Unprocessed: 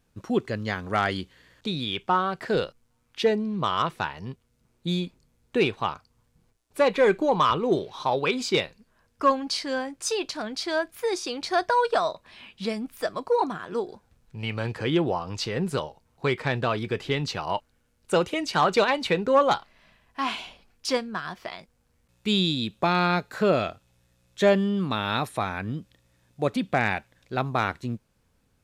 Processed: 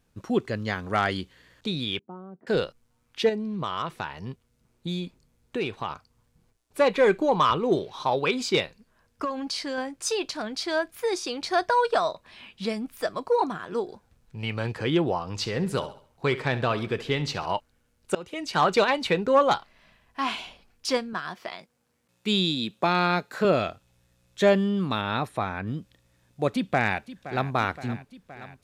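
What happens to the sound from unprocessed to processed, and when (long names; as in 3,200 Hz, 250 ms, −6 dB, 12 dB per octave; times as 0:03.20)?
0:01.99–0:02.47: four-pole ladder band-pass 260 Hz, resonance 45%
0:03.29–0:05.90: downward compressor 2 to 1, threshold −29 dBFS
0:09.24–0:09.78: downward compressor, threshold −26 dBFS
0:15.28–0:17.55: repeating echo 68 ms, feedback 39%, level −15 dB
0:18.15–0:18.62: fade in, from −23.5 dB
0:21.13–0:23.45: high-pass filter 160 Hz
0:25.01–0:25.67: high-shelf EQ 3,500 Hz −9 dB
0:26.50–0:27.52: delay throw 520 ms, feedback 70%, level −15 dB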